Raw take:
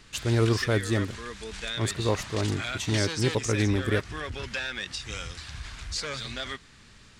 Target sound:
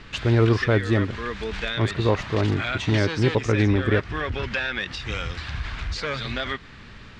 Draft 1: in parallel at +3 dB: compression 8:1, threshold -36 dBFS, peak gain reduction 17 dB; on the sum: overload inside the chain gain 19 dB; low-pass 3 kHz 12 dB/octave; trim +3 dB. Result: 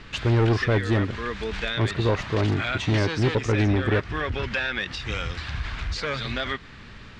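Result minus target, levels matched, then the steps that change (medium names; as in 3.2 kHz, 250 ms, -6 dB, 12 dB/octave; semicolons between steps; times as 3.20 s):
overload inside the chain: distortion +22 dB
change: overload inside the chain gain 12 dB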